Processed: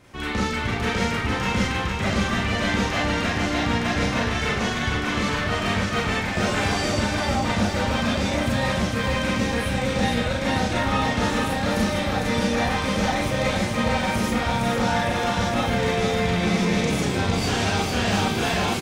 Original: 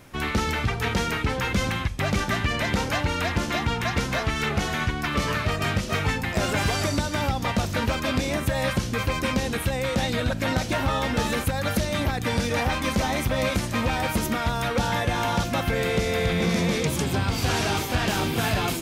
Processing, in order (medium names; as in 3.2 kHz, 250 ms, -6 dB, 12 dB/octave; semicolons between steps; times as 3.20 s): peaking EQ 13 kHz -13 dB 0.51 oct; feedback delay 457 ms, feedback 59%, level -5.5 dB; Chebyshev shaper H 3 -22 dB, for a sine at -10.5 dBFS; Schroeder reverb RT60 0.32 s, combs from 30 ms, DRR -3.5 dB; trim -2.5 dB